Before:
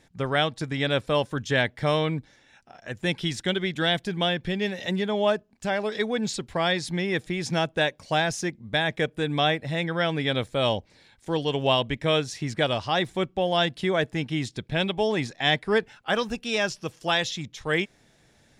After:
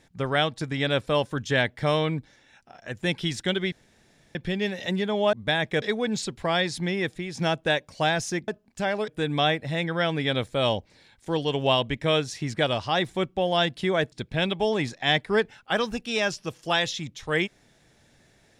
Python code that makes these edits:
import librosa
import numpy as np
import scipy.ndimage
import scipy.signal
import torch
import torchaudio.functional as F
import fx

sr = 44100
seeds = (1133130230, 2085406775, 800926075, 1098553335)

y = fx.edit(x, sr, fx.room_tone_fill(start_s=3.72, length_s=0.63),
    fx.swap(start_s=5.33, length_s=0.6, other_s=8.59, other_length_s=0.49),
    fx.fade_out_to(start_s=7.06, length_s=0.42, floor_db=-7.0),
    fx.cut(start_s=14.12, length_s=0.38), tone=tone)